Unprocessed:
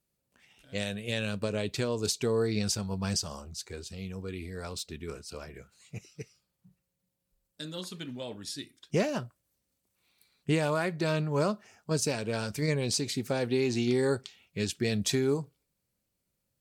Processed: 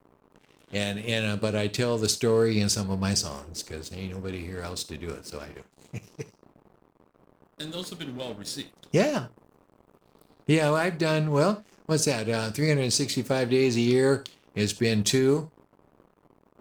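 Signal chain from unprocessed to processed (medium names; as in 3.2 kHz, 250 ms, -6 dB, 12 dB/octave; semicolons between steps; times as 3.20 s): band noise 120–490 Hz -53 dBFS; crossover distortion -50 dBFS; on a send: reverberation, pre-delay 3 ms, DRR 13.5 dB; on the sum: trim +5.5 dB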